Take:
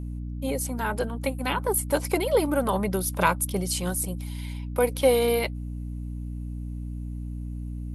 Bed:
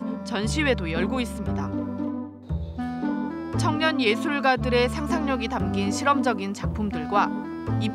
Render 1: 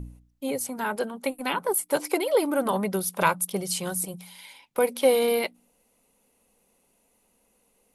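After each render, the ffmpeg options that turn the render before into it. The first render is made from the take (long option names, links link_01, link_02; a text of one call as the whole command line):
ffmpeg -i in.wav -af "bandreject=frequency=60:width_type=h:width=4,bandreject=frequency=120:width_type=h:width=4,bandreject=frequency=180:width_type=h:width=4,bandreject=frequency=240:width_type=h:width=4,bandreject=frequency=300:width_type=h:width=4" out.wav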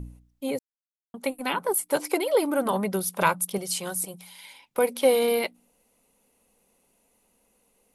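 ffmpeg -i in.wav -filter_complex "[0:a]asettb=1/sr,asplit=3[link_01][link_02][link_03];[link_01]atrim=end=3.584[link_04];[link_02]atrim=start=3.58:end=4.44,asetpts=PTS-STARTPTS,afade=type=in:duration=0.004:curve=qsin,afade=type=out:start_time=0.856:duration=0.004:curve=qsin,lowshelf=frequency=200:gain=-10[link_05];[link_03]atrim=start=4.436[link_06];[link_04][link_05]acrossfade=duration=0.004:curve1=hsin:curve2=qsin[link_07];[link_07][link_06]acrossfade=duration=0.004:curve1=qsin:curve2=hsin,asplit=3[link_08][link_09][link_10];[link_08]atrim=end=0.59,asetpts=PTS-STARTPTS,afade=type=out:start_time=0.586:duration=0.004:curve=hsin[link_11];[link_09]atrim=start=0.59:end=1.14,asetpts=PTS-STARTPTS,volume=0[link_12];[link_10]atrim=start=1.14,asetpts=PTS-STARTPTS,afade=type=in:duration=0.004:curve=hsin[link_13];[link_11][link_12][link_13]concat=n=3:v=0:a=1" out.wav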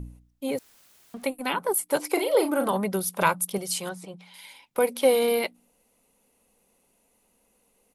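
ffmpeg -i in.wav -filter_complex "[0:a]asettb=1/sr,asplit=3[link_01][link_02][link_03];[link_01]atrim=end=0.504[link_04];[link_02]atrim=start=0.5:end=1.24,asetpts=PTS-STARTPTS,afade=type=in:duration=0.004:curve=qsin,afade=type=out:start_time=0.736:duration=0.004:curve=qsin,aeval=exprs='val(0)+0.5*0.00501*sgn(val(0))':channel_layout=same[link_05];[link_03]atrim=start=1.236[link_06];[link_04][link_05]acrossfade=duration=0.004:curve1=hsin:curve2=qsin[link_07];[link_07][link_06]acrossfade=duration=0.004:curve1=qsin:curve2=hsin,asplit=3[link_08][link_09][link_10];[link_08]afade=type=out:start_time=2.15:duration=0.02[link_11];[link_09]asplit=2[link_12][link_13];[link_13]adelay=37,volume=-7dB[link_14];[link_12][link_14]amix=inputs=2:normalize=0,afade=type=in:start_time=2.15:duration=0.02,afade=type=out:start_time=2.69:duration=0.02[link_15];[link_10]afade=type=in:start_time=2.69:duration=0.02[link_16];[link_11][link_15][link_16]amix=inputs=3:normalize=0,asettb=1/sr,asplit=3[link_17][link_18][link_19];[link_17]atrim=end=3.894[link_20];[link_18]atrim=start=3.89:end=4.34,asetpts=PTS-STARTPTS,afade=type=in:duration=0.004:curve=qsin,afade=type=out:start_time=0.446:duration=0.004:curve=qsin,lowpass=3500[link_21];[link_19]atrim=start=4.336[link_22];[link_20][link_21]acrossfade=duration=0.004:curve1=hsin:curve2=qsin[link_23];[link_23][link_22]acrossfade=duration=0.004:curve1=qsin:curve2=hsin" out.wav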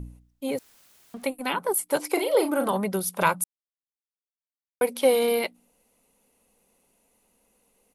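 ffmpeg -i in.wav -filter_complex "[0:a]asplit=3[link_01][link_02][link_03];[link_01]atrim=end=3.44,asetpts=PTS-STARTPTS,afade=type=out:start_time=3.436:duration=0.004:curve=hsin[link_04];[link_02]atrim=start=3.44:end=4.81,asetpts=PTS-STARTPTS,volume=0[link_05];[link_03]atrim=start=4.81,asetpts=PTS-STARTPTS,afade=type=in:duration=0.004:curve=hsin[link_06];[link_04][link_05][link_06]concat=n=3:v=0:a=1" out.wav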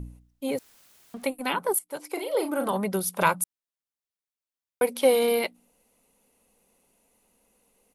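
ffmpeg -i in.wav -filter_complex "[0:a]asplit=2[link_01][link_02];[link_01]atrim=end=1.79,asetpts=PTS-STARTPTS,afade=type=out:start_time=1.786:duration=0.004:curve=hsin:silence=0.16788[link_03];[link_02]atrim=start=1.79,asetpts=PTS-STARTPTS,afade=type=in:duration=1.17:silence=0.16788[link_04];[link_03][link_04]concat=n=2:v=0:a=1" out.wav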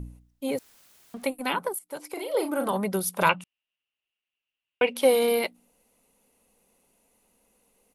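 ffmpeg -i in.wav -filter_complex "[0:a]asettb=1/sr,asplit=3[link_01][link_02][link_03];[link_01]atrim=end=1.684[link_04];[link_02]atrim=start=1.68:end=2.34,asetpts=PTS-STARTPTS,afade=type=in:duration=0.004:curve=qsin,afade=type=out:start_time=0.656:duration=0.004:curve=qsin,acompressor=threshold=-29dB:ratio=6:attack=3.2:release=140:knee=1:detection=peak[link_05];[link_03]atrim=start=2.336[link_06];[link_04][link_05]acrossfade=duration=0.004:curve1=hsin:curve2=qsin[link_07];[link_07][link_06]acrossfade=duration=0.004:curve1=qsin:curve2=hsin,asettb=1/sr,asplit=3[link_08][link_09][link_10];[link_08]atrim=end=3.294[link_11];[link_09]atrim=start=3.29:end=4.96,asetpts=PTS-STARTPTS,afade=type=in:duration=0.004:curve=qsin,afade=type=out:start_time=1.666:duration=0.004:curve=qsin,lowpass=frequency=2800:width_type=q:width=13[link_12];[link_10]atrim=start=4.956[link_13];[link_11][link_12]acrossfade=duration=0.004:curve1=hsin:curve2=qsin[link_14];[link_14][link_13]acrossfade=duration=0.004:curve1=qsin:curve2=hsin" out.wav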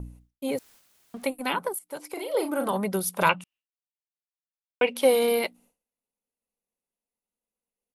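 ffmpeg -i in.wav -af "agate=range=-33dB:threshold=-51dB:ratio=3:detection=peak" out.wav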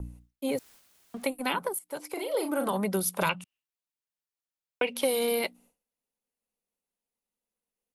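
ffmpeg -i in.wav -filter_complex "[0:a]acrossover=split=180|3000[link_01][link_02][link_03];[link_02]acompressor=threshold=-25dB:ratio=6[link_04];[link_01][link_04][link_03]amix=inputs=3:normalize=0" out.wav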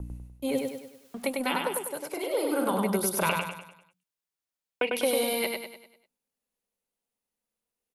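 ffmpeg -i in.wav -af "aecho=1:1:99|198|297|396|495|594:0.668|0.294|0.129|0.0569|0.0251|0.011" out.wav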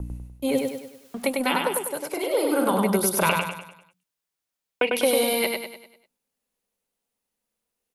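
ffmpeg -i in.wav -af "volume=5dB" out.wav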